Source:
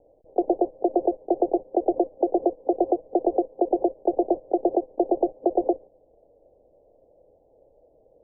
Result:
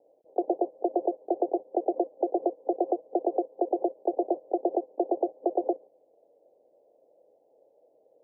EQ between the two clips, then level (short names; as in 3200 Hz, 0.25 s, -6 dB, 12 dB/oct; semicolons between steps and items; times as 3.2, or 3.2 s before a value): HPF 320 Hz 12 dB/oct; -3.5 dB